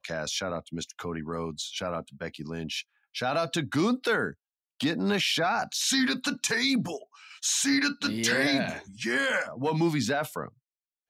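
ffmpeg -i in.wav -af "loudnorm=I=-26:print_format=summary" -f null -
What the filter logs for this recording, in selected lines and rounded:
Input Integrated:    -27.9 LUFS
Input True Peak:     -13.3 dBTP
Input LRA:             5.1 LU
Input Threshold:     -38.3 LUFS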